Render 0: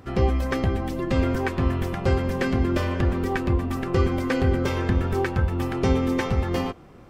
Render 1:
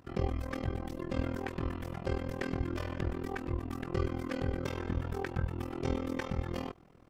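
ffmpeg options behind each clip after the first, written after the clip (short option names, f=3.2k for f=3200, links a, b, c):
-af "tremolo=f=41:d=0.947,volume=-8dB"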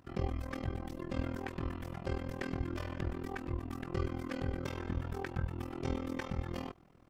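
-af "equalizer=f=460:w=3.8:g=-3.5,volume=-2.5dB"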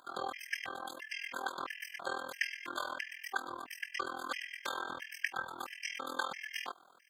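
-af "highpass=1.1k,afftfilt=real='re*gt(sin(2*PI*1.5*pts/sr)*(1-2*mod(floor(b*sr/1024/1600),2)),0)':imag='im*gt(sin(2*PI*1.5*pts/sr)*(1-2*mod(floor(b*sr/1024/1600),2)),0)':win_size=1024:overlap=0.75,volume=13dB"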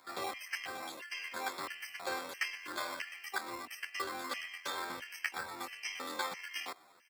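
-filter_complex "[0:a]acrossover=split=190|1400|3900[a][b][c][d];[b]acrusher=samples=14:mix=1:aa=0.000001[e];[a][e][c][d]amix=inputs=4:normalize=0,asplit=2[f][g];[g]adelay=10.9,afreqshift=-2.9[h];[f][h]amix=inputs=2:normalize=1,volume=4dB"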